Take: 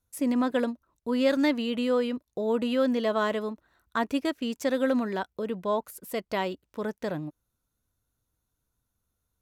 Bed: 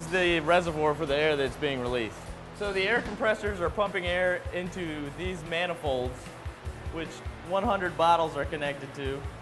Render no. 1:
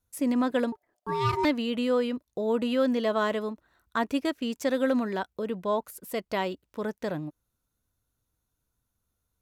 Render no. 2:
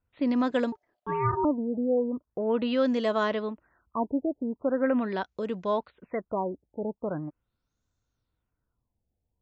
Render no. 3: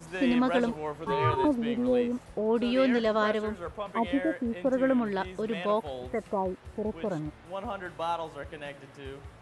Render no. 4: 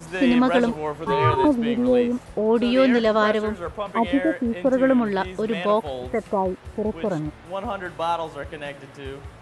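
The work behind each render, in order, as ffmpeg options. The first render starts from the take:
-filter_complex "[0:a]asettb=1/sr,asplit=3[a][b][c];[a]atrim=end=0.724[d];[b]atrim=start=0.72:end=1.45,asetpts=PTS-STARTPTS,afade=t=in:d=0.004:c=qsin,afade=t=out:st=0.726:d=0.004:c=qsin,aeval=exprs='val(0)*sin(2*PI*660*n/s)':c=same[e];[c]atrim=start=1.446[f];[d][e]acrossfade=d=0.004:c1=hsin:c2=qsin[g];[g][f]acrossfade=d=0.004:c1=qsin:c2=hsin"
-af "afftfilt=real='re*lt(b*sr/1024,870*pow(7900/870,0.5+0.5*sin(2*PI*0.41*pts/sr)))':imag='im*lt(b*sr/1024,870*pow(7900/870,0.5+0.5*sin(2*PI*0.41*pts/sr)))':win_size=1024:overlap=0.75"
-filter_complex "[1:a]volume=-9dB[a];[0:a][a]amix=inputs=2:normalize=0"
-af "volume=7dB"

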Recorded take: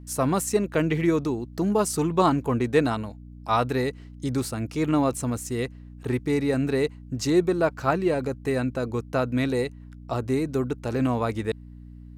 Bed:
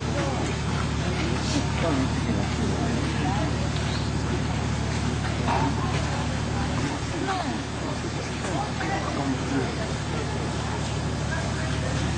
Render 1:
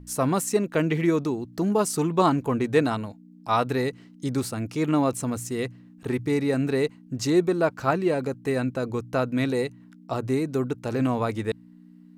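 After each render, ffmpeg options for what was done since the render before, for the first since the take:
-af "bandreject=f=60:t=h:w=4,bandreject=f=120:t=h:w=4"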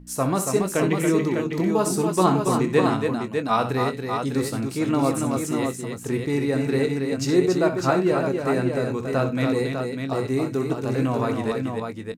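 -filter_complex "[0:a]asplit=2[a][b];[b]adelay=22,volume=-10.5dB[c];[a][c]amix=inputs=2:normalize=0,asplit=2[d][e];[e]aecho=0:1:63|96|280|601:0.299|0.119|0.531|0.531[f];[d][f]amix=inputs=2:normalize=0"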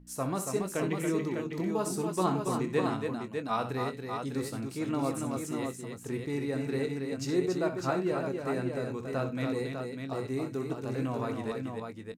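-af "volume=-9.5dB"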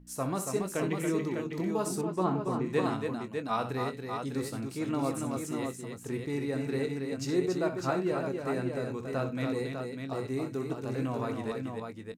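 -filter_complex "[0:a]asettb=1/sr,asplit=3[a][b][c];[a]atrim=end=2.014[d];[b]atrim=start=2.01:end=2.66,asetpts=PTS-STARTPTS,afade=t=in:d=0.004:c=qsin,afade=t=out:st=0.646:d=0.004:c=qsin,lowpass=f=1.5k:p=1[e];[c]atrim=start=2.656[f];[d][e]acrossfade=d=0.004:c1=hsin:c2=qsin[g];[g][f]acrossfade=d=0.004:c1=qsin:c2=hsin"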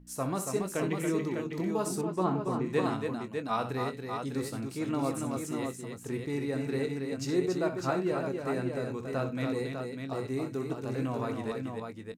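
-af anull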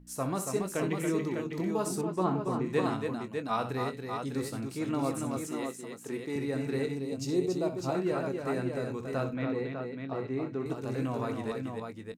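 -filter_complex "[0:a]asettb=1/sr,asplit=3[a][b][c];[a]atrim=end=5.474[d];[b]atrim=start=5.47:end=6.36,asetpts=PTS-STARTPTS,afade=t=in:d=0.004:c=qsin,afade=t=out:st=0.886:d=0.004:c=qsin,highpass=220[e];[c]atrim=start=6.356[f];[d][e]acrossfade=d=0.004:c1=hsin:c2=qsin[g];[g][f]acrossfade=d=0.004:c1=qsin:c2=hsin,asettb=1/sr,asplit=3[h][i][j];[h]atrim=end=6.954[k];[i]atrim=start=6.95:end=7.95,asetpts=PTS-STARTPTS,afade=t=in:d=0.004:c=qsin,afade=t=out:st=0.996:d=0.004:c=qsin,equalizer=f=1.6k:w=1.6:g=-12.5[l];[j]atrim=start=7.946[m];[k][l]acrossfade=d=0.004:c1=hsin:c2=qsin[n];[n][m]acrossfade=d=0.004:c1=qsin:c2=hsin,asettb=1/sr,asplit=3[o][p][q];[o]atrim=end=9.344[r];[p]atrim=start=9.34:end=10.66,asetpts=PTS-STARTPTS,afade=t=in:d=0.004:c=qsin,afade=t=out:st=1.316:d=0.004:c=qsin,highpass=100,lowpass=2.8k[s];[q]atrim=start=10.656[t];[r][s]acrossfade=d=0.004:c1=hsin:c2=qsin[u];[u][t]acrossfade=d=0.004:c1=qsin:c2=hsin"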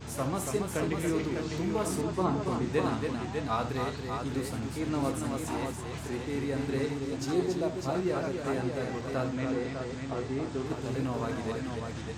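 -filter_complex "[1:a]volume=-14dB[a];[0:a][a]amix=inputs=2:normalize=0"

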